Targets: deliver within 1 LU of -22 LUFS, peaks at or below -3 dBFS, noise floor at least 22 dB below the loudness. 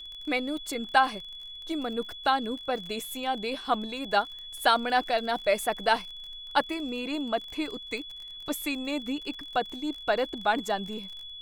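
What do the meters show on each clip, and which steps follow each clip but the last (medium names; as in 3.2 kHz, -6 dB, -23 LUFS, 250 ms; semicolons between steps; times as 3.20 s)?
tick rate 37 per s; steady tone 3.4 kHz; tone level -40 dBFS; loudness -29.5 LUFS; peak level -7.5 dBFS; loudness target -22.0 LUFS
-> de-click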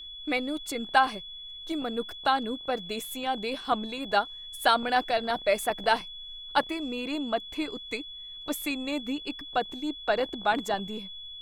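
tick rate 0.88 per s; steady tone 3.4 kHz; tone level -40 dBFS
-> band-stop 3.4 kHz, Q 30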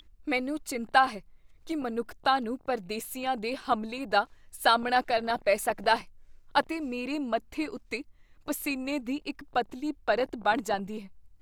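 steady tone not found; loudness -29.5 LUFS; peak level -7.5 dBFS; loudness target -22.0 LUFS
-> trim +7.5 dB; peak limiter -3 dBFS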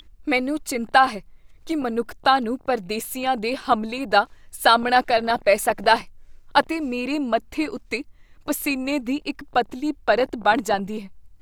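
loudness -22.5 LUFS; peak level -3.0 dBFS; noise floor -51 dBFS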